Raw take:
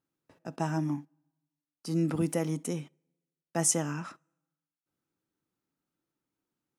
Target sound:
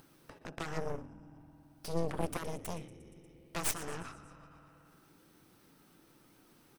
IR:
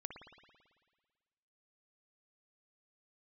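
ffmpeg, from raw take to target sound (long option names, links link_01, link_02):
-filter_complex "[0:a]acompressor=threshold=-48dB:ratio=1.5,bandreject=frequency=7000:width=6.9,asplit=2[link_01][link_02];[1:a]atrim=start_sample=2205[link_03];[link_02][link_03]afir=irnorm=-1:irlink=0,volume=-2.5dB[link_04];[link_01][link_04]amix=inputs=2:normalize=0,flanger=delay=1.2:depth=1.5:regen=83:speed=1.1:shape=triangular,asplit=6[link_05][link_06][link_07][link_08][link_09][link_10];[link_06]adelay=118,afreqshift=-43,volume=-16.5dB[link_11];[link_07]adelay=236,afreqshift=-86,volume=-21.9dB[link_12];[link_08]adelay=354,afreqshift=-129,volume=-27.2dB[link_13];[link_09]adelay=472,afreqshift=-172,volume=-32.6dB[link_14];[link_10]adelay=590,afreqshift=-215,volume=-37.9dB[link_15];[link_05][link_11][link_12][link_13][link_14][link_15]amix=inputs=6:normalize=0,acompressor=mode=upward:threshold=-46dB:ratio=2.5,aeval=exprs='0.0631*(cos(1*acos(clip(val(0)/0.0631,-1,1)))-cos(1*PI/2))+0.0316*(cos(4*acos(clip(val(0)/0.0631,-1,1)))-cos(4*PI/2))+0.0158*(cos(6*acos(clip(val(0)/0.0631,-1,1)))-cos(6*PI/2))+0.0178*(cos(7*acos(clip(val(0)/0.0631,-1,1)))-cos(7*PI/2))+0.0112*(cos(8*acos(clip(val(0)/0.0631,-1,1)))-cos(8*PI/2))':channel_layout=same,volume=2.5dB"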